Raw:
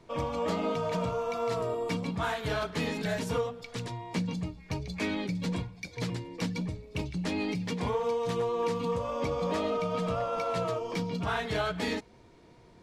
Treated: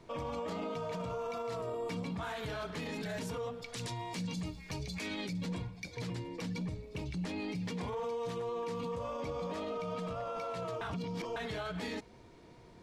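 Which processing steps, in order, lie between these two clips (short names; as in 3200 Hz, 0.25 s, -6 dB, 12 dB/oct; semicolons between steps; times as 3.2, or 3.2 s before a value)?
3.73–5.33 high shelf 2700 Hz +11 dB; limiter -31 dBFS, peak gain reduction 13 dB; 10.81–11.36 reverse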